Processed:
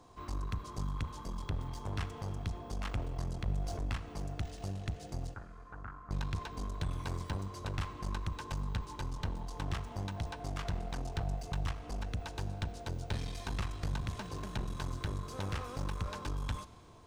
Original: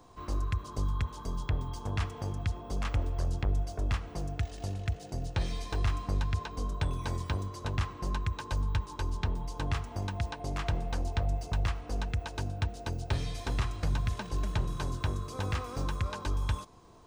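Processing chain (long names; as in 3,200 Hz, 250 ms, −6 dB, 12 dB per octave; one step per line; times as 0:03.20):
0:14.02–0:14.58: high-pass filter 63 Hz 24 dB per octave
asymmetric clip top −39.5 dBFS
0:05.34–0:06.11: transistor ladder low-pass 1,500 Hz, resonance 75%
four-comb reverb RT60 2.9 s, combs from 30 ms, DRR 16 dB
0:03.38–0:03.86: level that may fall only so fast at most 33 dB per second
level −2 dB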